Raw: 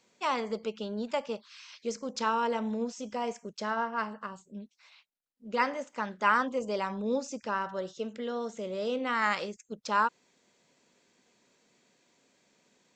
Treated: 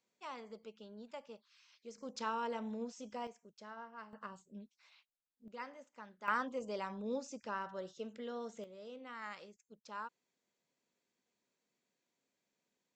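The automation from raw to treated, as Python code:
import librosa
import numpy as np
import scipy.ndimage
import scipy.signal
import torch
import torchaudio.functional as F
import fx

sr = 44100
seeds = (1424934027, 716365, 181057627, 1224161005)

y = fx.gain(x, sr, db=fx.steps((0.0, -17.0), (1.98, -9.5), (3.27, -18.5), (4.13, -8.0), (5.48, -18.5), (6.28, -9.0), (8.64, -18.5)))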